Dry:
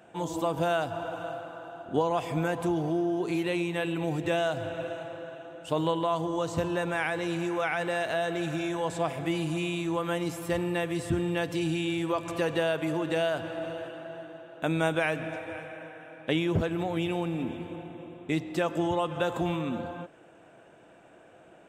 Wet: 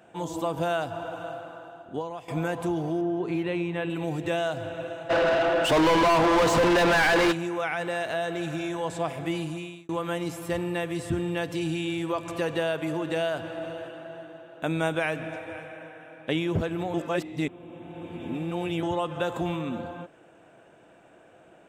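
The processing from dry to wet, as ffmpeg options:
-filter_complex "[0:a]asettb=1/sr,asplit=3[a][b][c];[a]atrim=end=3.014[d];[b]atrim=start=3.01:end=3.9,asetpts=PTS-STARTPTS,afade=t=in:d=0.004:c=qsin,afade=t=out:st=0.886:d=0.004:c=qsin,bass=f=250:g=3,treble=f=4k:g=-13[e];[c]atrim=start=3.896[f];[d][e]acrossfade=d=0.004:c1=hsin:c2=qsin[g];[g][f]acrossfade=d=0.004:c1=qsin:c2=hsin,asplit=3[h][i][j];[h]afade=t=out:st=5.09:d=0.02[k];[i]asplit=2[l][m];[m]highpass=f=720:p=1,volume=36dB,asoftclip=type=tanh:threshold=-13.5dB[n];[l][n]amix=inputs=2:normalize=0,lowpass=f=2.5k:p=1,volume=-6dB,afade=t=in:st=5.09:d=0.02,afade=t=out:st=7.31:d=0.02[o];[j]afade=t=in:st=7.31:d=0.02[p];[k][o][p]amix=inputs=3:normalize=0,asplit=5[q][r][s][t][u];[q]atrim=end=2.28,asetpts=PTS-STARTPTS,afade=t=out:st=1.52:d=0.76:silence=0.188365[v];[r]atrim=start=2.28:end=9.89,asetpts=PTS-STARTPTS,afade=t=in:d=0.004:c=hsin:silence=0.188365,afade=t=out:st=7.08:d=0.53[w];[s]atrim=start=9.89:end=16.942,asetpts=PTS-STARTPTS,afade=t=in:d=0.004:c=hsin[x];[t]atrim=start=16.938:end=18.832,asetpts=PTS-STARTPTS,areverse[y];[u]atrim=start=18.828[z];[v][w][x]concat=n=3:v=0:a=1[aa];[aa][y]acrossfade=d=0.004:c1=hsin:c2=hsin[ab];[ab][z]acrossfade=d=0.004:c1=hsin:c2=hsin"

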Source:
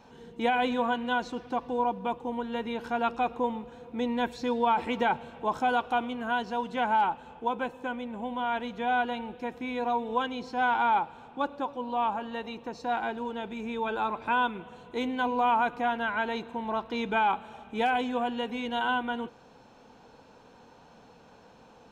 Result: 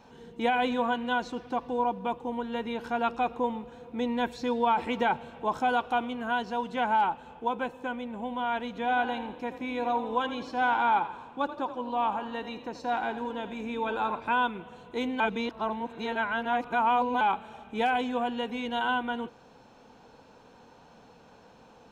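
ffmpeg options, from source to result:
-filter_complex "[0:a]asettb=1/sr,asplit=3[a][b][c];[a]atrim=end=8.674[d];[b]atrim=start=8.67:end=14.2,asetpts=PTS-STARTPTS,afade=t=in:d=0.004:c=qsin,afade=t=out:st=5.526:d=0.004:c=qsin,asplit=6[e][f][g][h][i][j];[f]adelay=83,afreqshift=32,volume=-12.5dB[k];[g]adelay=166,afreqshift=64,volume=-18.9dB[l];[h]adelay=249,afreqshift=96,volume=-25.3dB[m];[i]adelay=332,afreqshift=128,volume=-31.6dB[n];[j]adelay=415,afreqshift=160,volume=-38dB[o];[e][k][l][m][n][o]amix=inputs=6:normalize=0,atrim=end_sample=243873[p];[c]atrim=start=14.196[q];[d][p]acrossfade=d=0.004:c1=hsin:c2=qsin[r];[r][q]acrossfade=d=0.004:c1=qsin:c2=hsin,asplit=3[s][t][u];[s]atrim=end=15.202[v];[t]atrim=start=15.198:end=17.212,asetpts=PTS-STARTPTS,areverse[w];[u]atrim=start=17.208[x];[v][w]acrossfade=d=0.004:c1=hsin:c2=hsin[y];[y][x]acrossfade=d=0.004:c1=hsin:c2=hsin"

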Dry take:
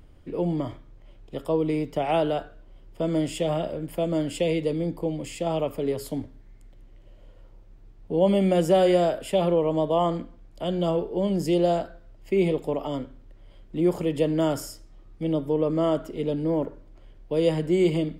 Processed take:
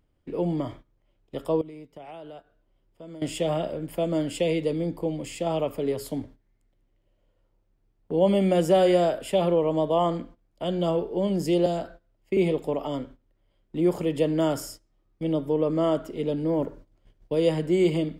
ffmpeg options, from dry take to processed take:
-filter_complex "[0:a]asettb=1/sr,asplit=3[a][b][c];[a]atrim=end=1.614[d];[b]atrim=start=1.61:end=3.22,asetpts=PTS-STARTPTS,afade=t=in:d=0.004:c=qsin,afade=t=out:st=1.606:d=0.004:c=qsin,acompressor=threshold=-40dB:ratio=5:attack=3.2:release=140:knee=1:detection=peak[e];[c]atrim=start=3.216[f];[d][e]acrossfade=d=0.004:c1=hsin:c2=qsin[g];[g][f]acrossfade=d=0.004:c1=qsin:c2=hsin,asettb=1/sr,asplit=3[h][i][j];[h]atrim=end=11.664[k];[i]atrim=start=11.66:end=12.37,asetpts=PTS-STARTPTS,afade=t=in:d=0.004:c=qsin,afade=t=out:st=0.706:d=0.004:c=qsin,acrossover=split=340|3000[l][m][n];[m]acompressor=threshold=-26dB:ratio=6:attack=3.2:release=140:knee=2.83:detection=peak[o];[l][o][n]amix=inputs=3:normalize=0[p];[j]atrim=start=12.366[q];[k][p]acrossfade=d=0.004:c1=hsin:c2=qsin[r];[r][q]acrossfade=d=0.004:c1=qsin:c2=hsin,asettb=1/sr,asplit=3[s][t][u];[s]atrim=end=16.594[v];[t]atrim=start=16.59:end=17.35,asetpts=PTS-STARTPTS,afade=t=in:d=0.004:c=qsin,afade=t=out:st=0.756:d=0.004:c=qsin,bass=f=250:g=3,treble=f=4k:g=5[w];[u]atrim=start=17.346[x];[v][w]acrossfade=d=0.004:c1=hsin:c2=qsin[y];[y][x]acrossfade=d=0.004:c1=qsin:c2=hsin,agate=range=-15dB:threshold=-42dB:ratio=16:detection=peak,lowshelf=f=78:g=-6"

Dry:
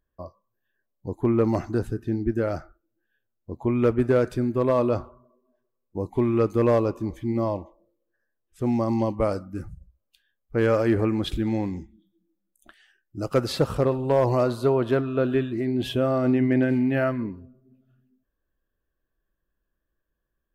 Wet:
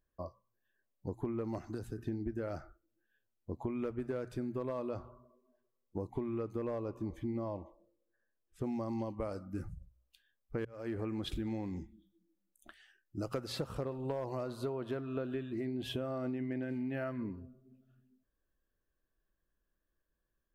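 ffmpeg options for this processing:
-filter_complex "[0:a]asettb=1/sr,asplit=3[a][b][c];[a]atrim=end=1.584[d];[b]atrim=start=1.58:end=1.98,asetpts=PTS-STARTPTS,afade=t=in:d=0.004:c=qsin,afade=t=out:st=0.396:d=0.004:c=qsin,acrossover=split=92|3400[e][f][g];[e]acompressor=threshold=-46dB:ratio=4[h];[f]acompressor=threshold=-33dB:ratio=4[i];[g]acompressor=threshold=-53dB:ratio=4[j];[h][i][j]amix=inputs=3:normalize=0[k];[c]atrim=start=1.976[l];[d][k]acrossfade=d=0.004:c1=hsin:c2=qsin[m];[m][l]acrossfade=d=0.004:c1=qsin:c2=hsin,asettb=1/sr,asplit=3[n][o][p];[n]atrim=end=6.074[q];[o]atrim=start=6.07:end=8.64,asetpts=PTS-STARTPTS,afade=t=in:d=0.004:c=qsin,afade=t=out:st=2.566:d=0.004:c=qsin,highshelf=f=2.5k:g=-6[r];[p]atrim=start=8.636[s];[q][r]acrossfade=d=0.004:c1=hsin:c2=qsin[t];[t][s]acrossfade=d=0.004:c1=qsin:c2=hsin,asplit=2[u][v];[u]atrim=end=10.65,asetpts=PTS-STARTPTS,afade=t=out:st=10.646:d=0.004:c=hsin[w];[v]atrim=start=10.65,asetpts=PTS-STARTPTS,afade=t=in:d=0.81[x];[w][x]concat=n=2:v=0:a=1,bandreject=f=60:t=h:w=6,bandreject=f=120:t=h:w=6,acompressor=threshold=-30dB:ratio=12,volume=-4dB"

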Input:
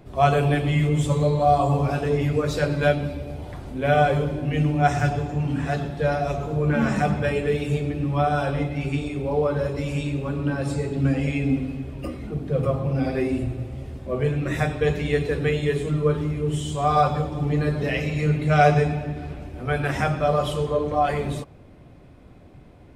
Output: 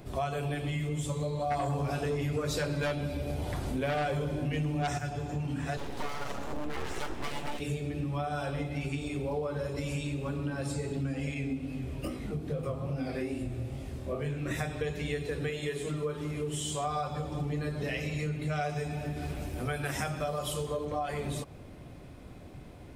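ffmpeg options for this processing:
-filter_complex "[0:a]asplit=3[a][b][c];[a]afade=t=out:st=1.5:d=0.02[d];[b]aeval=exprs='0.473*sin(PI/2*2*val(0)/0.473)':c=same,afade=t=in:st=1.5:d=0.02,afade=t=out:st=4.97:d=0.02[e];[c]afade=t=in:st=4.97:d=0.02[f];[d][e][f]amix=inputs=3:normalize=0,asettb=1/sr,asplit=3[g][h][i];[g]atrim=end=5.774[j];[h]atrim=start=5.77:end=7.6,asetpts=PTS-STARTPTS,afade=t=in:d=0.004:c=qsin,afade=t=out:st=1.826:d=0.004:c=qsin,aeval=exprs='abs(val(0))':c=same[k];[i]atrim=start=7.596[l];[j][k]acrossfade=d=0.004:c1=hsin:c2=qsin[m];[m][l]acrossfade=d=0.004:c1=qsin:c2=hsin,asettb=1/sr,asplit=3[n][o][p];[n]atrim=end=11.344[q];[o]atrim=start=11.34:end=14.51,asetpts=PTS-STARTPTS,afade=t=in:d=0.004:c=qsin,afade=t=out:st=3.166:d=0.004:c=qsin,flanger=delay=19:depth=7.8:speed=2.4[r];[p]atrim=start=14.506[s];[q][r]acrossfade=d=0.004:c1=hsin:c2=qsin[t];[t][s]acrossfade=d=0.004:c1=qsin:c2=hsin,asettb=1/sr,asplit=3[u][v][w];[u]atrim=end=15.504[x];[v]atrim=start=15.5:end=16.87,asetpts=PTS-STARTPTS,afade=t=in:d=0.004:c=qsin,afade=t=out:st=1.366:d=0.004:c=qsin,lowshelf=f=160:g=-10.5[y];[w]atrim=start=16.866[z];[x][y]acrossfade=d=0.004:c1=hsin:c2=qsin[aa];[aa][z]acrossfade=d=0.004:c1=qsin:c2=hsin,asettb=1/sr,asplit=3[ab][ac][ad];[ab]atrim=end=18.694[ae];[ac]atrim=start=18.69:end=20.85,asetpts=PTS-STARTPTS,afade=t=in:d=0.004:c=qsin,afade=t=out:st=2.156:d=0.004:c=qsin,highshelf=f=7.2k:g=10[af];[ad]atrim=start=20.846[ag];[ae][af]acrossfade=d=0.004:c1=hsin:c2=qsin[ah];[ah][ag]acrossfade=d=0.004:c1=qsin:c2=hsin,highshelf=f=4.2k:g=9,acompressor=threshold=-31dB:ratio=6"

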